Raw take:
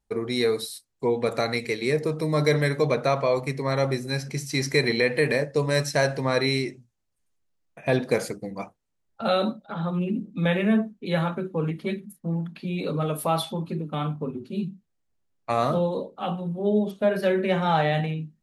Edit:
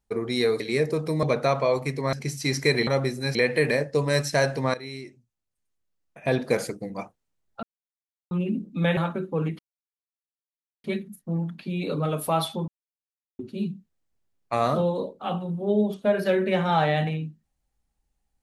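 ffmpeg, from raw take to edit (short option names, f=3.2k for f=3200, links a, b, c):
-filter_complex "[0:a]asplit=13[a][b][c][d][e][f][g][h][i][j][k][l][m];[a]atrim=end=0.602[n];[b]atrim=start=1.728:end=2.362[o];[c]atrim=start=2.838:end=3.742[p];[d]atrim=start=4.218:end=4.962[q];[e]atrim=start=3.738:end=4.222[r];[f]atrim=start=4.958:end=6.35,asetpts=PTS-STARTPTS,afade=t=out:st=1.388:d=0.004:c=hsin:silence=0.141254[s];[g]atrim=start=6.35:end=9.24,asetpts=PTS-STARTPTS,afade=t=in:d=1.88:silence=0.141254,afade=t=out:st=2.886:d=0.004:c=hsin[t];[h]atrim=start=9.24:end=9.92,asetpts=PTS-STARTPTS,volume=0[u];[i]atrim=start=9.92:end=10.582,asetpts=PTS-STARTPTS,afade=t=in:d=0.004:c=hsin[v];[j]atrim=start=11.188:end=11.81,asetpts=PTS-STARTPTS,afade=t=out:st=0.618:d=0.004:c=hsin,apad=pad_dur=1.25[w];[k]atrim=start=11.81:end=13.65,asetpts=PTS-STARTPTS,afade=t=in:d=0.004:c=hsin,afade=t=out:st=1.836:d=0.004:c=hsin[x];[l]atrim=start=13.65:end=14.36,asetpts=PTS-STARTPTS,volume=0[y];[m]atrim=start=14.36,asetpts=PTS-STARTPTS,afade=t=in:d=0.004:c=hsin[z];[n][o]acrossfade=d=0.004:c1=hsin:c2=hsin[aa];[aa][p]acrossfade=d=0.004:c1=hsin:c2=hsin[ab];[ab][q]acrossfade=d=0.004:c1=hsin:c2=hsin[ac];[ac][r]acrossfade=d=0.004:c1=hsin:c2=hsin[ad];[s][t][u][v]concat=n=4:v=0:a=1[ae];[ad][ae]acrossfade=d=0.004:c1=hsin:c2=hsin[af];[w][x][y][z]concat=n=4:v=0:a=1[ag];[af][ag]acrossfade=d=0.004:c1=hsin:c2=hsin"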